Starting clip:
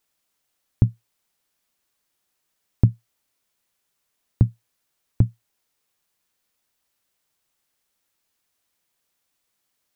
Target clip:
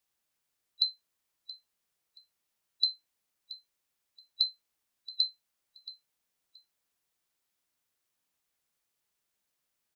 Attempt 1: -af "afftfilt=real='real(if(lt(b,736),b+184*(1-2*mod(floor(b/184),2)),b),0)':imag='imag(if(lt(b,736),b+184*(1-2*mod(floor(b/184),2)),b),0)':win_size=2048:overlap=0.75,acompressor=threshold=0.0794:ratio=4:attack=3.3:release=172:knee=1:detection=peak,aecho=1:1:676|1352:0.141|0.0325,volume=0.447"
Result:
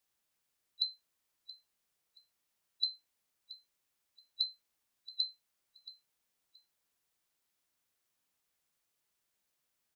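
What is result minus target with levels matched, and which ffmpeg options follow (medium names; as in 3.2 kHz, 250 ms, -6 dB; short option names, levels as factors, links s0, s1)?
compression: peak gain reduction +6.5 dB
-af "afftfilt=real='real(if(lt(b,736),b+184*(1-2*mod(floor(b/184),2)),b),0)':imag='imag(if(lt(b,736),b+184*(1-2*mod(floor(b/184),2)),b),0)':win_size=2048:overlap=0.75,acompressor=threshold=0.211:ratio=4:attack=3.3:release=172:knee=1:detection=peak,aecho=1:1:676|1352:0.141|0.0325,volume=0.447"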